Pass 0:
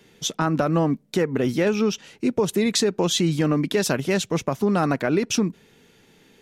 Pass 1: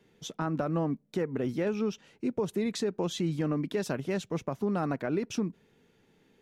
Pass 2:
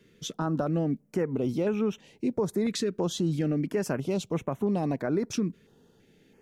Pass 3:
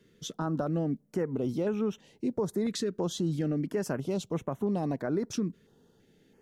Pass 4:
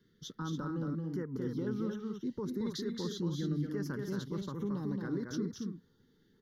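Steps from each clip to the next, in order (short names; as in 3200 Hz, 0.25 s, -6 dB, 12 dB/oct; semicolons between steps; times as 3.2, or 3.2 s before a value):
high shelf 2200 Hz -8.5 dB; gain -8.5 dB
in parallel at -2 dB: limiter -28.5 dBFS, peak gain reduction 9 dB; on the sum: stepped notch 3 Hz 810–4800 Hz
bell 2400 Hz -6 dB 0.38 oct; gain -2.5 dB
fixed phaser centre 2500 Hz, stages 6; on a send: loudspeakers at several distances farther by 77 m -4 dB, 96 m -8 dB; on the sum: gain -4.5 dB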